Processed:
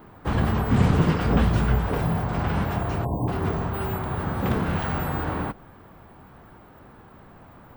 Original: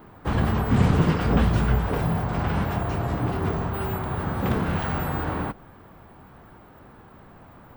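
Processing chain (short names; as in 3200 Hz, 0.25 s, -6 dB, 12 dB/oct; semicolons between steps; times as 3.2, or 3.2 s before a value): spectral delete 3.05–3.28, 1100–9000 Hz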